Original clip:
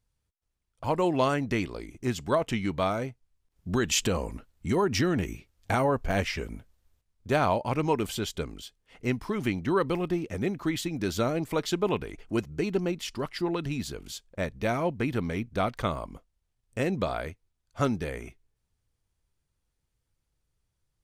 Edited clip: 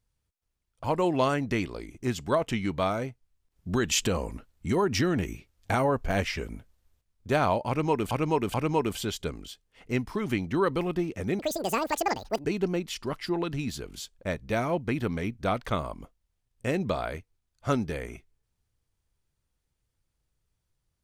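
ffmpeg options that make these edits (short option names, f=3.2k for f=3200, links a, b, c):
-filter_complex "[0:a]asplit=5[a][b][c][d][e];[a]atrim=end=8.112[f];[b]atrim=start=7.678:end=8.112[g];[c]atrim=start=7.678:end=10.534[h];[d]atrim=start=10.53:end=12.57,asetpts=PTS-STARTPTS,asetrate=85113,aresample=44100,atrim=end_sample=46613,asetpts=PTS-STARTPTS[i];[e]atrim=start=12.566[j];[f][g]acrossfade=d=0.004:c1=hsin:c2=hsin[k];[k][h]acrossfade=d=0.004:c1=hsin:c2=hsin[l];[l][i]acrossfade=d=0.004:c1=hsin:c2=hsin[m];[m][j]acrossfade=d=0.004:c1=hsin:c2=hsin"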